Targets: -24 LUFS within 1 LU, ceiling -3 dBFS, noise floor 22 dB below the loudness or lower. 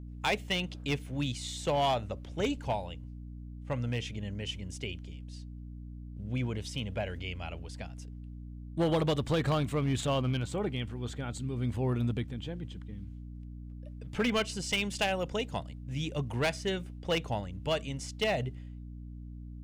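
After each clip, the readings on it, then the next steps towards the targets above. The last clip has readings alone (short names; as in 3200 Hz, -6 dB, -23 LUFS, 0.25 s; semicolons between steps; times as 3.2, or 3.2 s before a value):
clipped 0.7%; flat tops at -22.5 dBFS; hum 60 Hz; harmonics up to 300 Hz; hum level -41 dBFS; loudness -33.5 LUFS; peak -22.5 dBFS; loudness target -24.0 LUFS
-> clip repair -22.5 dBFS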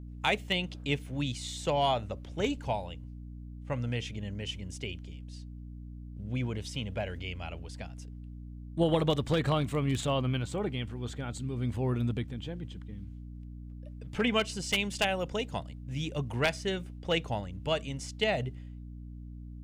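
clipped 0.0%; hum 60 Hz; harmonics up to 300 Hz; hum level -41 dBFS
-> notches 60/120/180/240/300 Hz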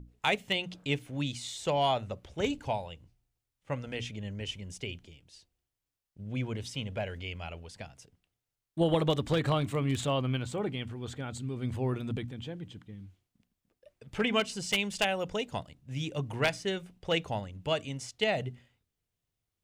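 hum none; loudness -33.0 LUFS; peak -13.0 dBFS; loudness target -24.0 LUFS
-> gain +9 dB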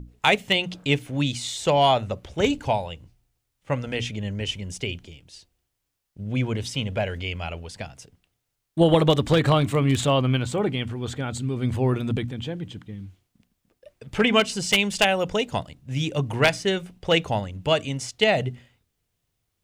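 loudness -24.0 LUFS; peak -4.0 dBFS; noise floor -78 dBFS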